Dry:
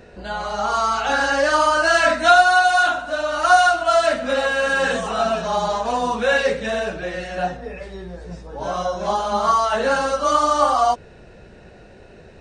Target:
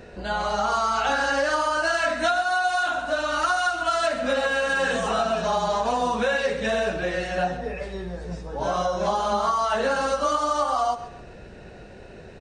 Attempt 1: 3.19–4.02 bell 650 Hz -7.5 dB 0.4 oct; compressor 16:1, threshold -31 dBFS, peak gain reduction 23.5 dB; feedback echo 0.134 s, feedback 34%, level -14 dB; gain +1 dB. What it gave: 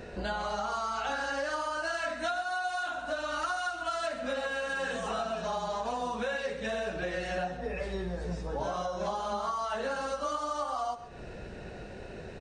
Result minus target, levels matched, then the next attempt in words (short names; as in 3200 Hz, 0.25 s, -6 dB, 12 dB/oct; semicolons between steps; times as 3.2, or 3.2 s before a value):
compressor: peak gain reduction +10 dB
3.19–4.02 bell 650 Hz -7.5 dB 0.4 oct; compressor 16:1, threshold -20.5 dBFS, peak gain reduction 13.5 dB; feedback echo 0.134 s, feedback 34%, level -14 dB; gain +1 dB